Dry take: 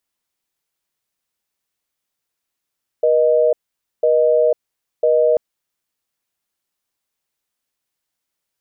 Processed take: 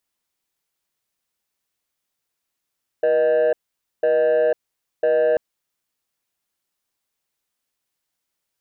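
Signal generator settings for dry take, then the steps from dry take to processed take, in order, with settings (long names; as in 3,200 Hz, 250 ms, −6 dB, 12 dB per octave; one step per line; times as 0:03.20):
call progress tone busy tone, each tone −14 dBFS 2.34 s
soft clipping −13 dBFS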